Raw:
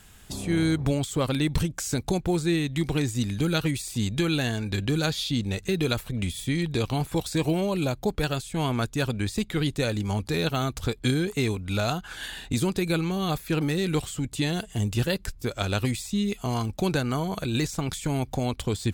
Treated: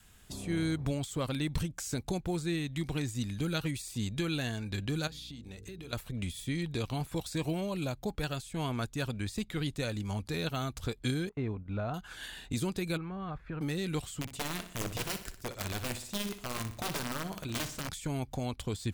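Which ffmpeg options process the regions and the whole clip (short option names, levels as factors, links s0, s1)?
-filter_complex "[0:a]asettb=1/sr,asplit=3[s0][s1][s2];[s0]atrim=end=5.074[s3];[s1]atrim=start=5.07:end=5.93,asetpts=PTS-STARTPTS,afade=t=in:d=0.004:c=qsin,afade=t=out:st=0.856:d=0.004:c=qsin,bandreject=f=50:t=h:w=6,bandreject=f=100:t=h:w=6,bandreject=f=150:t=h:w=6,bandreject=f=200:t=h:w=6,bandreject=f=250:t=h:w=6,bandreject=f=300:t=h:w=6,bandreject=f=350:t=h:w=6,bandreject=f=400:t=h:w=6,bandreject=f=450:t=h:w=6,bandreject=f=500:t=h:w=6,acompressor=threshold=0.02:ratio=12:attack=3.2:release=140:knee=1:detection=peak,aeval=exprs='val(0)+0.00447*(sin(2*PI*60*n/s)+sin(2*PI*2*60*n/s)/2+sin(2*PI*3*60*n/s)/3+sin(2*PI*4*60*n/s)/4+sin(2*PI*5*60*n/s)/5)':c=same[s4];[s2]atrim=start=5.926[s5];[s3][s4]acrossfade=d=0.004:c1=hsin:c2=qsin[s6];[s6][s5]acrossfade=d=0.004:c1=qsin:c2=hsin,asettb=1/sr,asplit=3[s7][s8][s9];[s7]atrim=end=11.294[s10];[s8]atrim=start=11.29:end=11.94,asetpts=PTS-STARTPTS,afade=t=in:d=0.004:c=qsin,afade=t=out:st=0.646:d=0.004:c=qsin,lowpass=1300,agate=range=0.178:threshold=0.0158:ratio=16:release=100:detection=peak[s11];[s9]atrim=start=11.936[s12];[s10][s11]acrossfade=d=0.004:c1=hsin:c2=qsin[s13];[s13][s12]acrossfade=d=0.004:c1=qsin:c2=hsin,asettb=1/sr,asplit=3[s14][s15][s16];[s14]atrim=end=12.974[s17];[s15]atrim=start=12.97:end=13.61,asetpts=PTS-STARTPTS,afade=t=in:d=0.004:c=qsin,afade=t=out:st=0.636:d=0.004:c=qsin,asubboost=boost=9.5:cutoff=160,acompressor=threshold=0.0398:ratio=4:attack=3.2:release=140:knee=1:detection=peak,lowpass=f=1500:t=q:w=1.6[s18];[s16]atrim=start=13.606[s19];[s17][s18]acrossfade=d=0.004:c1=hsin:c2=qsin[s20];[s20][s19]acrossfade=d=0.004:c1=qsin:c2=hsin,asettb=1/sr,asplit=3[s21][s22][s23];[s21]atrim=end=14.214[s24];[s22]atrim=start=14.21:end=17.89,asetpts=PTS-STARTPTS,afade=t=in:d=0.004:c=qsin,afade=t=out:st=3.676:d=0.004:c=qsin,aeval=exprs='(mod(10*val(0)+1,2)-1)/10':c=same,tremolo=f=20:d=0.4,aecho=1:1:61|122|183|244|305:0.266|0.13|0.0639|0.0313|0.0153,atrim=end_sample=162288[s25];[s23]atrim=start=17.886[s26];[s24][s25]acrossfade=d=0.004:c1=hsin:c2=qsin[s27];[s27][s26]acrossfade=d=0.004:c1=qsin:c2=hsin,bandreject=f=820:w=24,adynamicequalizer=threshold=0.00891:dfrequency=400:dqfactor=2.2:tfrequency=400:tqfactor=2.2:attack=5:release=100:ratio=0.375:range=2:mode=cutabove:tftype=bell,volume=0.422"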